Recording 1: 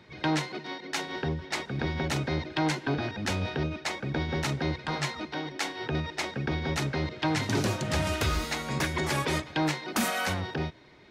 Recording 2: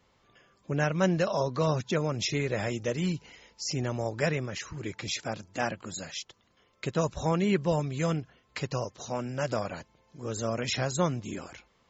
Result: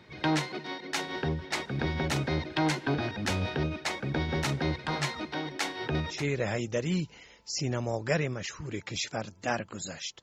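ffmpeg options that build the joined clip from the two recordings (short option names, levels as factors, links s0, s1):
-filter_complex "[0:a]apad=whole_dur=10.22,atrim=end=10.22,atrim=end=6.27,asetpts=PTS-STARTPTS[s0];[1:a]atrim=start=2.19:end=6.34,asetpts=PTS-STARTPTS[s1];[s0][s1]acrossfade=d=0.2:c1=tri:c2=tri"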